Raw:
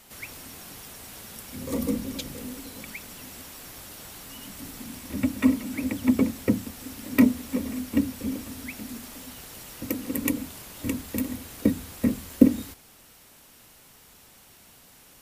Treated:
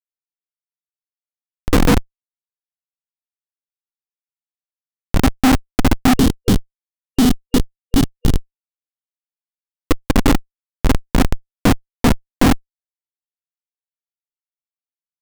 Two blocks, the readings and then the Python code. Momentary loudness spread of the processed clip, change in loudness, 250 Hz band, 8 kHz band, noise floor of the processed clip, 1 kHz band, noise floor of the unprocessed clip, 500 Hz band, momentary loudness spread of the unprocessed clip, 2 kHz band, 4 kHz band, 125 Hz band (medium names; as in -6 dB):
9 LU, +10.0 dB, +6.5 dB, +7.5 dB, under -85 dBFS, +19.0 dB, -54 dBFS, +10.0 dB, 19 LU, +11.5 dB, +13.5 dB, +15.0 dB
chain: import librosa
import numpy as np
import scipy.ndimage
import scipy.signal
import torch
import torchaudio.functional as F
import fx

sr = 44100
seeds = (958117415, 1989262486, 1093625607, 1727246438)

y = fx.low_shelf_res(x, sr, hz=660.0, db=11.0, q=3.0)
y = fx.schmitt(y, sr, flips_db=-11.0)
y = fx.spec_box(y, sr, start_s=6.15, length_s=2.73, low_hz=480.0, high_hz=2800.0, gain_db=-8)
y = y * 10.0 ** (6.0 / 20.0)